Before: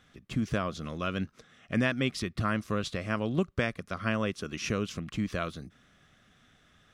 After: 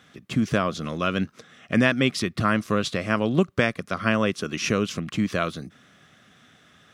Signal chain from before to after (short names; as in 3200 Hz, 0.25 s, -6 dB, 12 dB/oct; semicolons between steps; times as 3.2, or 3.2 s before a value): HPF 120 Hz 12 dB/oct; gain +8 dB